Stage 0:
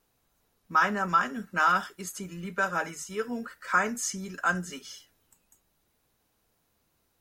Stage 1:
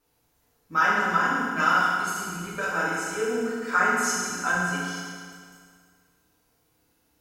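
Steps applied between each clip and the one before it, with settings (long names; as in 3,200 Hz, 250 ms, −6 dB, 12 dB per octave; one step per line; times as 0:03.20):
feedback delay network reverb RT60 2 s, low-frequency decay 1×, high-frequency decay 0.9×, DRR −8 dB
level −4 dB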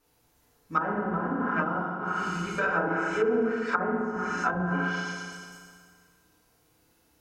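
echo through a band-pass that steps 114 ms, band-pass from 310 Hz, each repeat 1.4 octaves, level −9.5 dB
treble cut that deepens with the level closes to 580 Hz, closed at −20.5 dBFS
level +2.5 dB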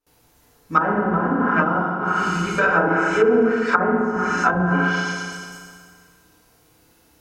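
noise gate with hold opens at −58 dBFS
level +9 dB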